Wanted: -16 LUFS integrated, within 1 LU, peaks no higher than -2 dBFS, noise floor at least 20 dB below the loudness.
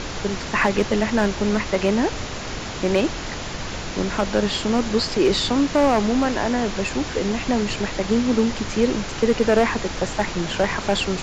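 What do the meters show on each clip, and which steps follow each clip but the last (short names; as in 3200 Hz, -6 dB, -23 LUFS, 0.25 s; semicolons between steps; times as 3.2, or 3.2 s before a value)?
clipped 0.9%; flat tops at -10.0 dBFS; noise floor -31 dBFS; noise floor target -42 dBFS; loudness -22.0 LUFS; peak -10.0 dBFS; loudness target -16.0 LUFS
-> clip repair -10 dBFS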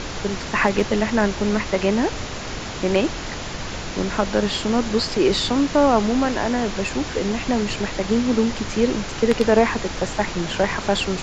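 clipped 0.0%; noise floor -31 dBFS; noise floor target -42 dBFS
-> noise print and reduce 11 dB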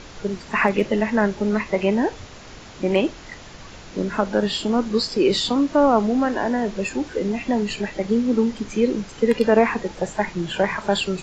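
noise floor -41 dBFS; noise floor target -42 dBFS
-> noise print and reduce 6 dB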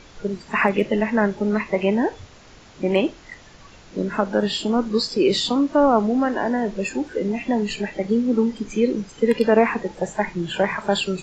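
noise floor -47 dBFS; loudness -21.5 LUFS; peak -4.0 dBFS; loudness target -16.0 LUFS
-> gain +5.5 dB; limiter -2 dBFS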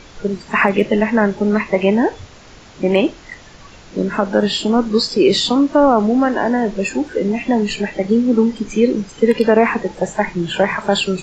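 loudness -16.5 LUFS; peak -2.0 dBFS; noise floor -41 dBFS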